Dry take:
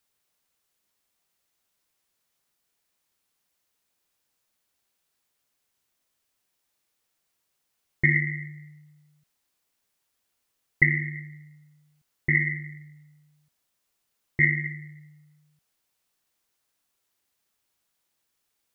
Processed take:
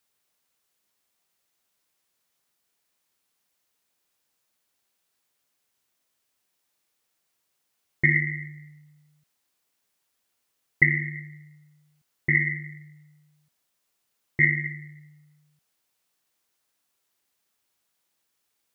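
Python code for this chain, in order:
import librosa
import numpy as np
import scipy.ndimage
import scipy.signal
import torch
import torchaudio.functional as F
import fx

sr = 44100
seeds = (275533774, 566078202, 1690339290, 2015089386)

y = fx.low_shelf(x, sr, hz=64.0, db=-10.0)
y = F.gain(torch.from_numpy(y), 1.0).numpy()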